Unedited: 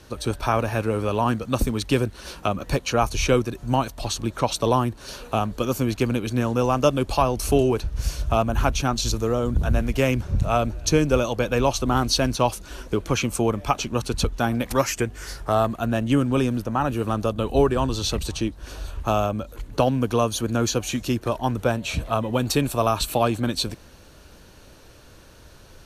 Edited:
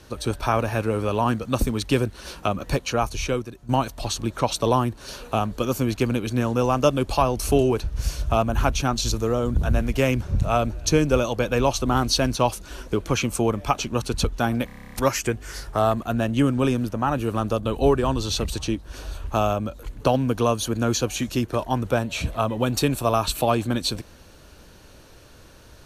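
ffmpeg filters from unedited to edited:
-filter_complex "[0:a]asplit=11[a][b][c][d][e][f][g][h][i][j][k];[a]atrim=end=3.69,asetpts=PTS-STARTPTS,afade=t=out:st=2.71:d=0.98:silence=0.237137[l];[b]atrim=start=3.69:end=14.692,asetpts=PTS-STARTPTS,afade=t=in:d=0.004:c=hsin:silence=0.237137[m];[c]atrim=start=14.658:end=14.692[n];[d]atrim=start=14.658:end=14.692[o];[e]atrim=start=14.658:end=14.692[p];[f]atrim=start=14.658:end=14.692[q];[g]atrim=start=14.658:end=14.692[r];[h]atrim=start=14.658:end=14.692[s];[i]atrim=start=14.658:end=14.692[t];[j]atrim=start=14.658:end=14.692[u];[k]atrim=start=14.658[v];[l][m]concat=n=2:v=0:a=1[w];[w][n]acrossfade=d=0.004:c1=hsin:c2=hsin[x];[x][o]acrossfade=d=0.004:c1=hsin:c2=hsin[y];[y][p]acrossfade=d=0.004:c1=hsin:c2=hsin[z];[z][q]acrossfade=d=0.004:c1=hsin:c2=hsin[aa];[aa][r]acrossfade=d=0.004:c1=hsin:c2=hsin[ab];[ab][s]acrossfade=d=0.004:c1=hsin:c2=hsin[ac];[ac][t]acrossfade=d=0.004:c1=hsin:c2=hsin[ad];[ad][u]acrossfade=d=0.004:c1=hsin:c2=hsin[ae];[ae][v]acrossfade=d=0.004:c1=hsin:c2=hsin"

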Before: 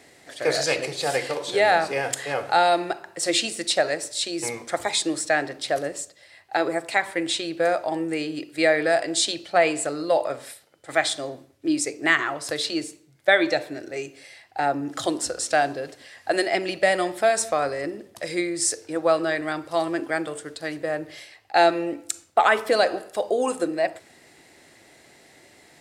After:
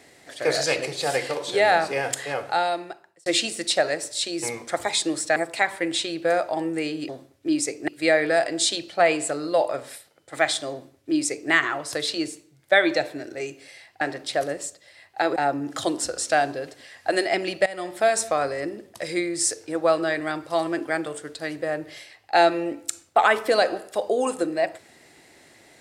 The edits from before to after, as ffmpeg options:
-filter_complex "[0:a]asplit=8[a][b][c][d][e][f][g][h];[a]atrim=end=3.26,asetpts=PTS-STARTPTS,afade=t=out:st=2.17:d=1.09[i];[b]atrim=start=3.26:end=5.362,asetpts=PTS-STARTPTS,afade=t=in:d=0.004:c=hsin[j];[c]atrim=start=6.708:end=8.442[k];[d]atrim=start=11.278:end=12.072[l];[e]atrim=start=8.438:end=14.572[m];[f]atrim=start=5.358:end=6.712[n];[g]atrim=start=14.568:end=16.87,asetpts=PTS-STARTPTS,afade=t=out:st=2.298:d=0.004:c=hsin:silence=0.1[o];[h]atrim=start=16.87,asetpts=PTS-STARTPTS,afade=t=in:d=0.41:silence=0.1[p];[i][j]concat=n=2:v=0:a=1[q];[q][k]acrossfade=d=0.004:c1=hsin:c2=hsin[r];[r][l]acrossfade=d=0.004:c1=hsin:c2=hsin[s];[s][m]acrossfade=d=0.004:c1=hsin:c2=hsin[t];[t][n]acrossfade=d=0.004:c1=hsin:c2=hsin[u];[o][p]concat=n=2:v=0:a=1[v];[u][v]acrossfade=d=0.004:c1=hsin:c2=hsin"

